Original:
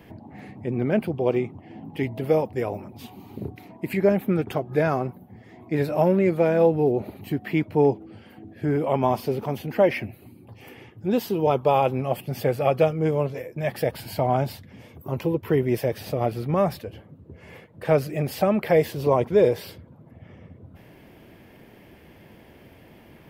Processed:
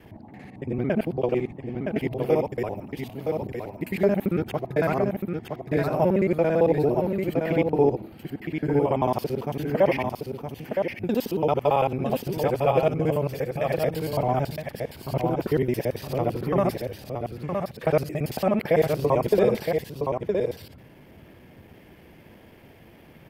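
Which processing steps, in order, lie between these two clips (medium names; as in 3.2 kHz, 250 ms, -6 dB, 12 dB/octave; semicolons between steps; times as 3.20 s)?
time reversed locally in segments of 56 ms; on a send: delay 966 ms -5 dB; on the sum: trim -1.5 dB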